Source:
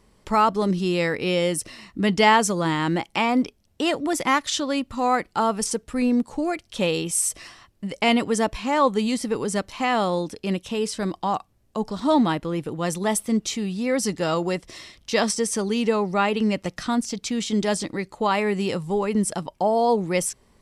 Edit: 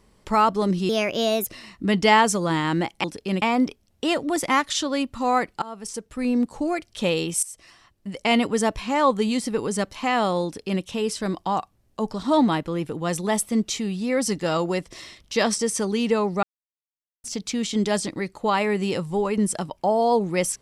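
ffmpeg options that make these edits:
-filter_complex "[0:a]asplit=9[a][b][c][d][e][f][g][h][i];[a]atrim=end=0.894[j];[b]atrim=start=0.89:end=1.62,asetpts=PTS-STARTPTS,asetrate=55566,aresample=44100[k];[c]atrim=start=1.616:end=3.192[l];[d]atrim=start=10.218:end=10.602[m];[e]atrim=start=3.188:end=5.39,asetpts=PTS-STARTPTS,afade=t=out:st=2.198:d=0.004:c=hsin:silence=0.0944061[n];[f]atrim=start=5.39:end=7.2,asetpts=PTS-STARTPTS,afade=t=in:d=0.85:silence=0.0944061,afade=t=out:st=1.806:d=0.004:c=hsin:silence=0.141254[o];[g]atrim=start=7.2:end=16.2,asetpts=PTS-STARTPTS,afade=t=in:d=0.96:silence=0.141254,afade=t=out:st=8.996:d=0.004:c=hsin[p];[h]atrim=start=16.2:end=17.01,asetpts=PTS-STARTPTS,volume=0[q];[i]atrim=start=17.01,asetpts=PTS-STARTPTS,afade=t=in:d=0.004:c=hsin[r];[j][k]acrossfade=d=0.004:c1=hsin:c2=hsin[s];[s][l]acrossfade=d=0.004:c1=hsin:c2=hsin[t];[t][m]acrossfade=d=0.004:c1=hsin:c2=hsin[u];[n][o][p][q][r]concat=n=5:v=0:a=1[v];[u][v]acrossfade=d=0.004:c1=hsin:c2=hsin"

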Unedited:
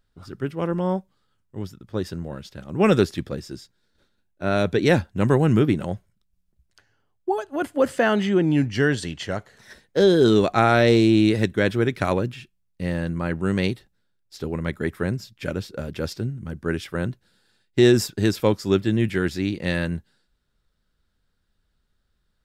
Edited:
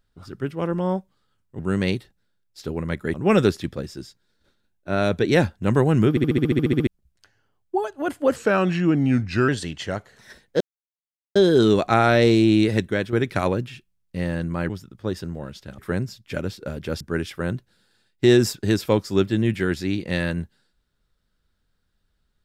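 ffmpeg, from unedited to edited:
-filter_complex "[0:a]asplit=21[a][b][c][d][e][f][g][h][i][j][k][l][m][n][o][p][q][r][s][t][u];[a]atrim=end=1.592[v];[b]atrim=start=13.348:end=14.902[w];[c]atrim=start=2.678:end=5.712[x];[d]atrim=start=5.638:end=5.712[y];[e]atrim=start=5.638:end=5.712[z];[f]atrim=start=5.638:end=5.712[aa];[g]atrim=start=5.638:end=5.712[ab];[h]atrim=start=5.638:end=5.712[ac];[i]atrim=start=5.638:end=5.712[ad];[j]atrim=start=5.638:end=5.712[ae];[k]atrim=start=5.638:end=5.712[af];[l]atrim=start=5.638:end=5.712[ag];[m]atrim=start=5.638:end=5.712[ah];[n]atrim=start=6.408:end=7.904[ai];[o]atrim=start=7.9:end=8.89,asetpts=PTS-STARTPTS,asetrate=38808,aresample=44100,atrim=end_sample=49612,asetpts=PTS-STARTPTS[aj];[p]atrim=start=8.886:end=10.01,asetpts=PTS-STARTPTS,afade=t=out:st=1.12:d=0.004:c=hsin,apad=pad_dur=0.75[ak];[q]atrim=start=10.01:end=11.78,asetpts=PTS-STARTPTS,afade=t=in:d=0.004:c=hsin,afade=t=out:st=1.47:d=0.3:silence=0.398107[al];[r]atrim=start=11.78:end=13.352,asetpts=PTS-STARTPTS,afade=t=in:d=0.004:c=hsin:silence=0.398107[am];[s]atrim=start=1.588:end=2.682[an];[t]atrim=start=14.898:end=16.122[ao];[u]atrim=start=16.548[ap];[v][w]acrossfade=d=0.004:c1=hsin:c2=hsin[aq];[aq][x]acrossfade=d=0.004:c1=hsin:c2=hsin[ar];[ar][y]acrossfade=d=0.004:c1=hsin:c2=hsin[as];[as][z]acrossfade=d=0.004:c1=hsin:c2=hsin[at];[at][aa]acrossfade=d=0.004:c1=hsin:c2=hsin[au];[au][ab]acrossfade=d=0.004:c1=hsin:c2=hsin[av];[av][ac]acrossfade=d=0.004:c1=hsin:c2=hsin[aw];[aw][ad]acrossfade=d=0.004:c1=hsin:c2=hsin[ax];[ax][ae]acrossfade=d=0.004:c1=hsin:c2=hsin[ay];[ay][af]acrossfade=d=0.004:c1=hsin:c2=hsin[az];[az][ag]acrossfade=d=0.004:c1=hsin:c2=hsin[ba];[ba][ah]acrossfade=d=0.004:c1=hsin:c2=hsin[bb];[bb][ai]acrossfade=d=0.004:c1=hsin:c2=hsin[bc];[bc][aj]acrossfade=d=0.004:c1=hsin:c2=hsin[bd];[ak][al][am]concat=n=3:v=0:a=1[be];[bd][be]acrossfade=d=0.004:c1=hsin:c2=hsin[bf];[bf][an]acrossfade=d=0.004:c1=hsin:c2=hsin[bg];[bg][ao]acrossfade=d=0.004:c1=hsin:c2=hsin[bh];[bh][ap]acrossfade=d=0.004:c1=hsin:c2=hsin"

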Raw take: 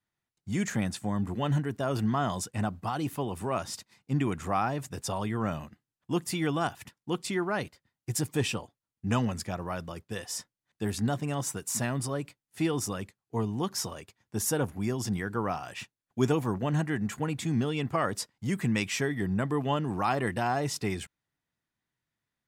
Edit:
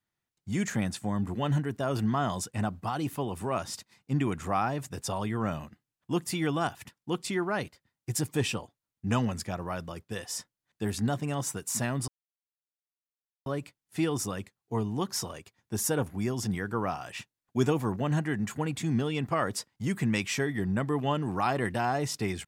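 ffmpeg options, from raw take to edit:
-filter_complex "[0:a]asplit=2[a][b];[a]atrim=end=12.08,asetpts=PTS-STARTPTS,afade=t=out:st=12.076:d=0.004:c=hsin,apad=pad_dur=1.38[c];[b]atrim=start=12.08,asetpts=PTS-STARTPTS,afade=t=in:d=0.004:c=hsin[d];[c][d]concat=n=2:v=0:a=1"

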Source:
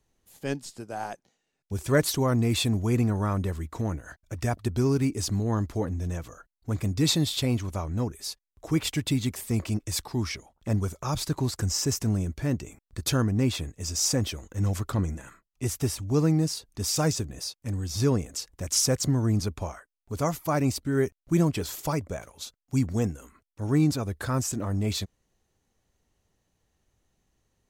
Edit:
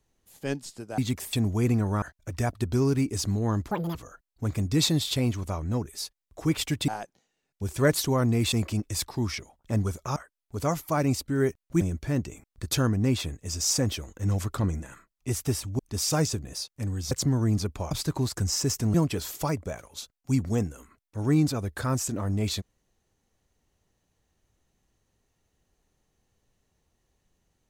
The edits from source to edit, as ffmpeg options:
-filter_complex "[0:a]asplit=14[a][b][c][d][e][f][g][h][i][j][k][l][m][n];[a]atrim=end=0.982[o];[b]atrim=start=9.138:end=9.492[p];[c]atrim=start=2.618:end=3.312[q];[d]atrim=start=4.058:end=5.754[r];[e]atrim=start=5.75:end=6.21,asetpts=PTS-STARTPTS,asetrate=84231,aresample=44100[s];[f]atrim=start=6.206:end=9.142[t];[g]atrim=start=0.978:end=2.622[u];[h]atrim=start=9.488:end=11.132[v];[i]atrim=start=19.728:end=21.382[w];[j]atrim=start=12.158:end=16.142[x];[k]atrim=start=16.648:end=17.972[y];[l]atrim=start=18.928:end=19.732[z];[m]atrim=start=11.128:end=12.162[aa];[n]atrim=start=21.378[ab];[o][p]acrossfade=d=0.004:c1=hsin:c2=hsin[ac];[ac][q]acrossfade=d=0.004:c1=hsin:c2=hsin[ad];[ad][r]acrossfade=d=0.004:c1=hsin:c2=hsin[ae];[ae][s]acrossfade=d=0.004:c1=hsin:c2=hsin[af];[af][t]acrossfade=d=0.004:c1=hsin:c2=hsin[ag];[ag][u]acrossfade=d=0.004:c1=hsin:c2=hsin[ah];[ah][v]acrossfade=d=0.004:c1=hsin:c2=hsin[ai];[ai][w]acrossfade=d=0.004:c1=hsin:c2=hsin[aj];[aj][x]acrossfade=d=0.004:c1=hsin:c2=hsin[ak];[ak][y]acrossfade=d=0.004:c1=hsin:c2=hsin[al];[al][z]acrossfade=d=0.004:c1=hsin:c2=hsin[am];[am][aa]acrossfade=d=0.004:c1=hsin:c2=hsin[an];[an][ab]acrossfade=d=0.004:c1=hsin:c2=hsin"

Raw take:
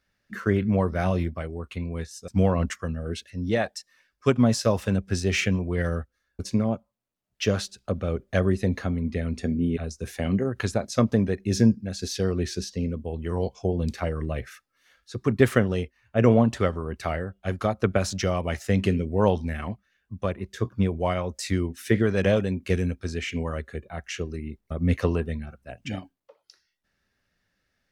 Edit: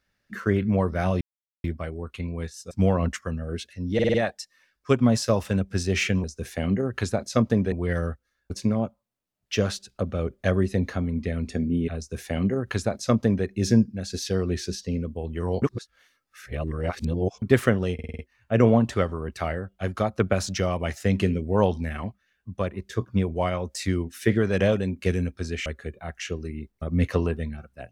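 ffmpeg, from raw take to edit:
-filter_complex "[0:a]asplit=16[a][b][c][d][e][f][g][h][i][j][k][l][m][n][o][p];[a]atrim=end=1.21,asetpts=PTS-STARTPTS,afade=t=out:st=1.206:d=0.004:c=hsin,apad=pad_dur=0.43[q];[b]atrim=start=1.21:end=3.562,asetpts=PTS-STARTPTS,afade=t=in:d=0.004:c=hsin[r];[c]atrim=start=3.508:end=3.562[s];[d]atrim=start=3.508:end=3.562[t];[e]atrim=start=3.508:end=3.562[u];[f]atrim=start=3.508:end=5.612[v];[g]atrim=start=9.858:end=11.342[w];[h]atrim=start=5.608:end=13.512[x];[i]atrim=start=13.508:end=15.312,asetpts=PTS-STARTPTS,areverse[y];[j]atrim=start=15.308:end=15.882[z];[k]atrim=start=15.828:end=15.882[aa];[l]atrim=start=15.828:end=15.882[ab];[m]atrim=start=15.828:end=15.882[ac];[n]atrim=start=15.828:end=15.882[ad];[o]atrim=start=15.828:end=23.302[ae];[p]atrim=start=23.548[af];[q][r]concat=n=2:v=0:a=1[ag];[ag][s]acrossfade=d=0.004:c1=hsin:c2=hsin[ah];[ah][t]acrossfade=d=0.004:c1=hsin:c2=hsin[ai];[ai][u]acrossfade=d=0.004:c1=hsin:c2=hsin[aj];[aj][v]acrossfade=d=0.004:c1=hsin:c2=hsin[ak];[ak][w]acrossfade=d=0.004:c1=hsin:c2=hsin[al];[al][x]acrossfade=d=0.004:c1=hsin:c2=hsin[am];[am][y]acrossfade=d=0.004:c1=hsin:c2=hsin[an];[an][z]acrossfade=d=0.004:c1=hsin:c2=hsin[ao];[ao][aa]acrossfade=d=0.004:c1=hsin:c2=hsin[ap];[ap][ab]acrossfade=d=0.004:c1=hsin:c2=hsin[aq];[aq][ac]acrossfade=d=0.004:c1=hsin:c2=hsin[ar];[ar][ad]acrossfade=d=0.004:c1=hsin:c2=hsin[as];[as][ae]acrossfade=d=0.004:c1=hsin:c2=hsin[at];[at][af]acrossfade=d=0.004:c1=hsin:c2=hsin"

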